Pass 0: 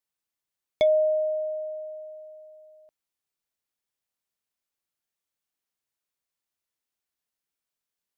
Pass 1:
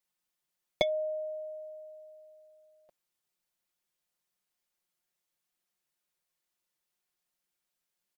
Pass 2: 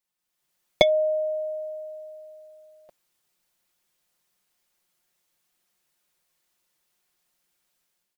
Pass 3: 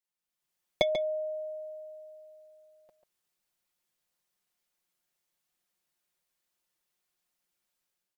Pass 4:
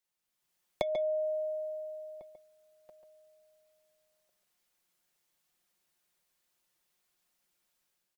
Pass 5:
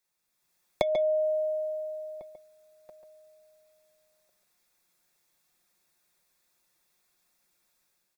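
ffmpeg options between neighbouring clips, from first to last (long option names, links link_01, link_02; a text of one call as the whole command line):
ffmpeg -i in.wav -af "aecho=1:1:5.6:0.84" out.wav
ffmpeg -i in.wav -af "dynaudnorm=framelen=150:gausssize=5:maxgain=10.5dB" out.wav
ffmpeg -i in.wav -filter_complex "[0:a]asplit=2[link_01][link_02];[link_02]adelay=139.9,volume=-8dB,highshelf=frequency=4000:gain=-3.15[link_03];[link_01][link_03]amix=inputs=2:normalize=0,volume=-8.5dB" out.wav
ffmpeg -i in.wav -filter_complex "[0:a]acrossover=split=520|1500[link_01][link_02][link_03];[link_01]acompressor=threshold=-47dB:ratio=4[link_04];[link_02]acompressor=threshold=-35dB:ratio=4[link_05];[link_03]acompressor=threshold=-53dB:ratio=4[link_06];[link_04][link_05][link_06]amix=inputs=3:normalize=0,asplit=2[link_07][link_08];[link_08]adelay=1399,volume=-21dB,highshelf=frequency=4000:gain=-31.5[link_09];[link_07][link_09]amix=inputs=2:normalize=0,volume=4dB" out.wav
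ffmpeg -i in.wav -af "asuperstop=centerf=3000:order=4:qfactor=7.6,volume=5.5dB" out.wav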